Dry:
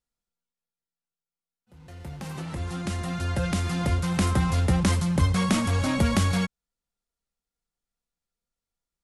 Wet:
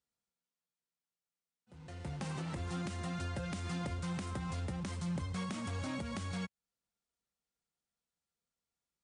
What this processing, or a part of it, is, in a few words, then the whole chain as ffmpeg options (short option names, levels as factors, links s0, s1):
podcast mastering chain: -af "highpass=76,acompressor=threshold=0.0316:ratio=4,alimiter=level_in=1.41:limit=0.0631:level=0:latency=1:release=416,volume=0.708,volume=0.794" -ar 22050 -c:a libmp3lame -b:a 96k